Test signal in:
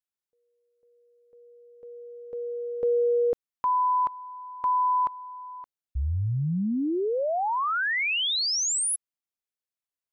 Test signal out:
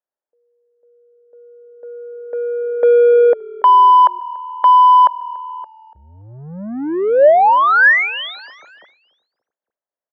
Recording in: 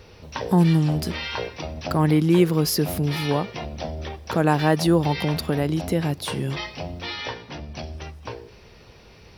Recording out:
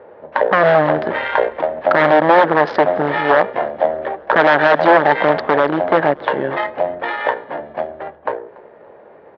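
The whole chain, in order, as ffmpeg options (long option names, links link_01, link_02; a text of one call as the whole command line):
ffmpeg -i in.wav -filter_complex "[0:a]adynamicsmooth=sensitivity=2:basefreq=790,aresample=16000,aeval=exprs='0.141*(abs(mod(val(0)/0.141+3,4)-2)-1)':channel_layout=same,aresample=44100,aeval=exprs='0.168*(cos(1*acos(clip(val(0)/0.168,-1,1)))-cos(1*PI/2))+0.015*(cos(3*acos(clip(val(0)/0.168,-1,1)))-cos(3*PI/2))':channel_layout=same,highpass=480,equalizer=frequency=590:width_type=q:width=4:gain=8,equalizer=frequency=870:width_type=q:width=4:gain=3,equalizer=frequency=1700:width_type=q:width=4:gain=7,equalizer=frequency=2600:width_type=q:width=4:gain=-8,lowpass=frequency=3200:width=0.5412,lowpass=frequency=3200:width=1.3066,asplit=2[link_01][link_02];[link_02]asplit=3[link_03][link_04][link_05];[link_03]adelay=286,afreqshift=-39,volume=-23dB[link_06];[link_04]adelay=572,afreqshift=-78,volume=-29.4dB[link_07];[link_05]adelay=858,afreqshift=-117,volume=-35.8dB[link_08];[link_06][link_07][link_08]amix=inputs=3:normalize=0[link_09];[link_01][link_09]amix=inputs=2:normalize=0,alimiter=level_in=17dB:limit=-1dB:release=50:level=0:latency=1,volume=-1dB" out.wav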